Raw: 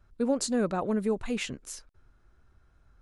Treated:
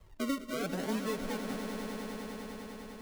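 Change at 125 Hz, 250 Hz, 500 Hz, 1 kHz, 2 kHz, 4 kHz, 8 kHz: -4.0, -5.0, -7.0, -3.5, -1.0, -3.5, -9.0 dB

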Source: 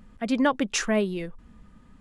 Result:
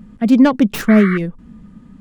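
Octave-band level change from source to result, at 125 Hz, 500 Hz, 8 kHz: +16.0 dB, +7.5 dB, n/a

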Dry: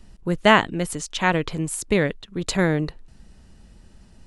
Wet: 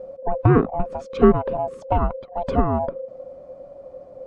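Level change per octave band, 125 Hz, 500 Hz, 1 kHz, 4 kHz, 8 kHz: +4.0 dB, +3.0 dB, +0.5 dB, under -20 dB, under -25 dB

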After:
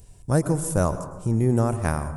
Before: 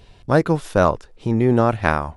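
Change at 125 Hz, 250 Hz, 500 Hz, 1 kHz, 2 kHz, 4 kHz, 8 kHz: -0.5 dB, -4.5 dB, -7.0 dB, -9.0 dB, -11.0 dB, n/a, +10.5 dB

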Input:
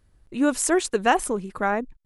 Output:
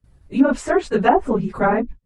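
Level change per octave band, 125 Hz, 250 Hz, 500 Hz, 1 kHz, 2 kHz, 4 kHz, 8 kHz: +11.5, +6.0, +5.5, +4.5, +1.0, -4.0, -13.0 dB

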